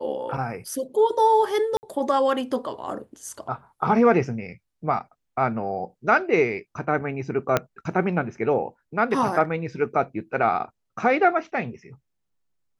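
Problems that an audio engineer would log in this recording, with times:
1.77–1.83 gap 59 ms
7.57 pop -6 dBFS

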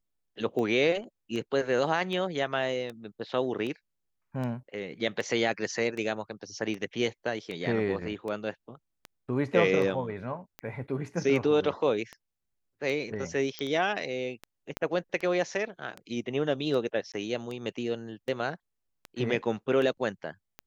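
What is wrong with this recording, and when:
tick 78 rpm -24 dBFS
13.59 pop -19 dBFS
14.77 pop -16 dBFS
17.12–17.14 gap 17 ms

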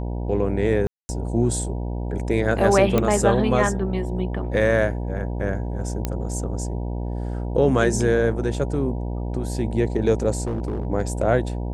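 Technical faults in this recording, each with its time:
buzz 60 Hz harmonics 16 -27 dBFS
0.87–1.09 gap 0.22 s
2.98 pop -7 dBFS
6.05 pop -10 dBFS
10.47–10.87 clipped -21.5 dBFS

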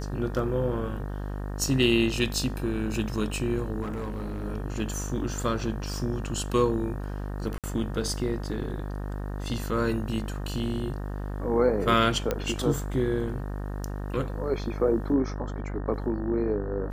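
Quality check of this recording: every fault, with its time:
buzz 50 Hz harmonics 37 -33 dBFS
3.81–4.45 clipped -29 dBFS
7.58–7.64 gap 57 ms
12.31 pop -12 dBFS

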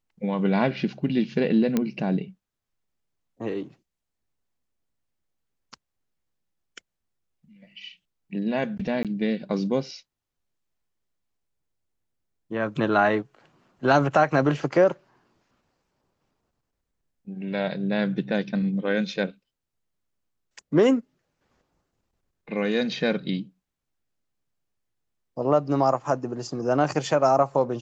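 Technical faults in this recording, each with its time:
1.77 pop -10 dBFS
9.03–9.05 gap 17 ms

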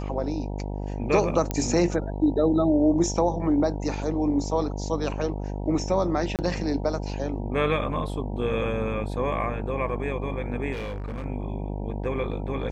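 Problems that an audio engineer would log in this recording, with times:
buzz 50 Hz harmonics 19 -31 dBFS
1.51 pop -12 dBFS
6.36–6.39 gap 28 ms
10.72–11.26 clipped -29 dBFS

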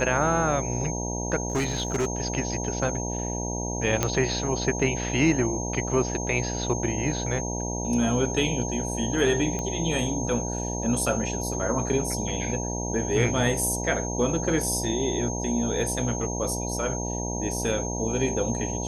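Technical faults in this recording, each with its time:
buzz 60 Hz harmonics 16 -31 dBFS
tone 6400 Hz -33 dBFS
1.48–2.07 clipped -21 dBFS
4.03 pop -8 dBFS
9.59 pop -17 dBFS

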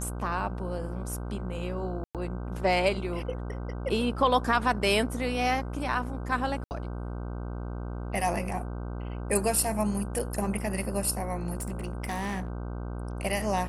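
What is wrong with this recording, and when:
buzz 60 Hz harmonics 26 -35 dBFS
2.04–2.15 gap 0.107 s
6.64–6.71 gap 69 ms
11.58–12.5 clipped -28.5 dBFS

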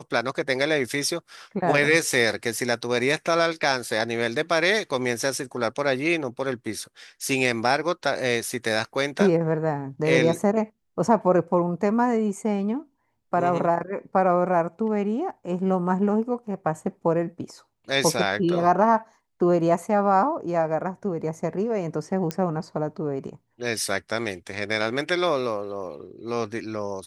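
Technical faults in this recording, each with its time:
22.31 pop -12 dBFS

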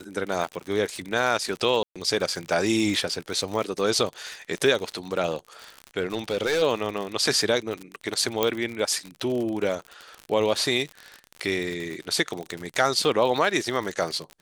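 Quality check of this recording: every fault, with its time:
crackle 68/s -29 dBFS
1.83–1.96 gap 0.126 s
6–6.63 clipped -20 dBFS
8.43 pop -7 dBFS

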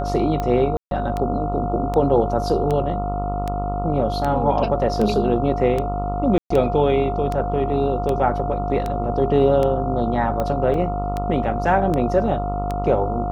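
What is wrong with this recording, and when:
buzz 50 Hz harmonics 28 -26 dBFS
tick 78 rpm -12 dBFS
tone 710 Hz -25 dBFS
0.77–0.91 gap 0.142 s
6.38–6.5 gap 0.124 s
10.74 gap 2.2 ms

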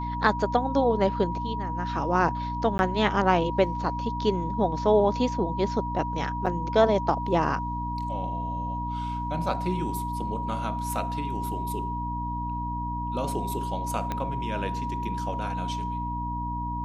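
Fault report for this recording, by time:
hum 60 Hz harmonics 5 -33 dBFS
tone 960 Hz -31 dBFS
2.78–2.79 gap 11 ms
6.46 gap 5 ms
14.12 pop -16 dBFS

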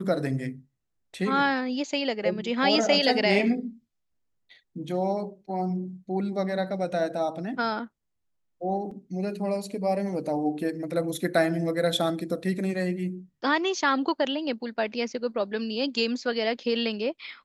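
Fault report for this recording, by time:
8.91 gap 3.9 ms

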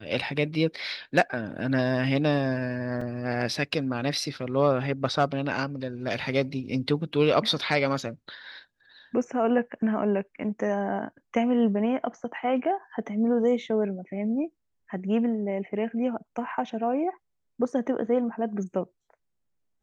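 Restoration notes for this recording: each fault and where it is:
3.01 gap 4 ms

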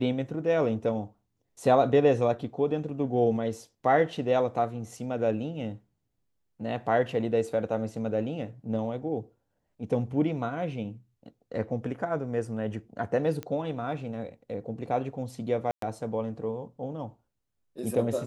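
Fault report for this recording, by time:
13.43 pop -21 dBFS
15.71–15.82 gap 0.113 s

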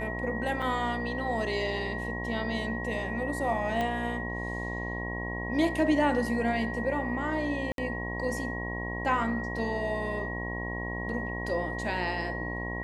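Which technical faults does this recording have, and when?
buzz 60 Hz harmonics 18 -36 dBFS
tone 1900 Hz -36 dBFS
0.62 gap 4.7 ms
3.81 pop -18 dBFS
7.72–7.78 gap 62 ms

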